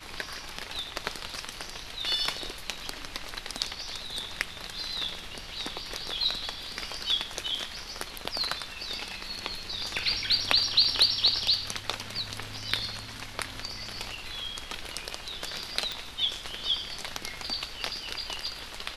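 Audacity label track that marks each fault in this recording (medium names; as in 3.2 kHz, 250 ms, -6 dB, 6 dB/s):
15.920000	15.920000	pop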